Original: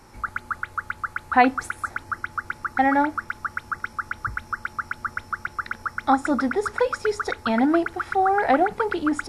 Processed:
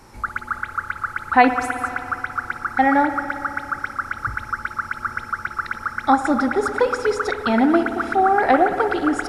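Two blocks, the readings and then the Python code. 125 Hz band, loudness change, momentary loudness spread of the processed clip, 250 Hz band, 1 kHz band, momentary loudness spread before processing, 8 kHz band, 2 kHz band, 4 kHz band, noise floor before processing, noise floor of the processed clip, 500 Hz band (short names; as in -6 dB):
+3.5 dB, +3.5 dB, 11 LU, +3.5 dB, +3.5 dB, 11 LU, +3.0 dB, +3.5 dB, +3.5 dB, -47 dBFS, -38 dBFS, +4.0 dB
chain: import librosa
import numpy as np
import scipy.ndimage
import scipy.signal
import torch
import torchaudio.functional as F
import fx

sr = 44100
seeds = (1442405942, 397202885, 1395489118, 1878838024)

y = fx.rev_spring(x, sr, rt60_s=2.8, pass_ms=(58,), chirp_ms=70, drr_db=8.0)
y = y * librosa.db_to_amplitude(3.0)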